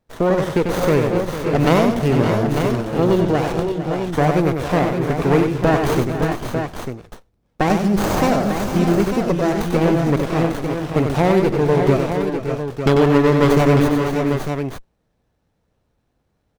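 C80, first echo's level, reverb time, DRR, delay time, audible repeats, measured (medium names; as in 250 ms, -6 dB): no reverb, -5.5 dB, no reverb, no reverb, 94 ms, 5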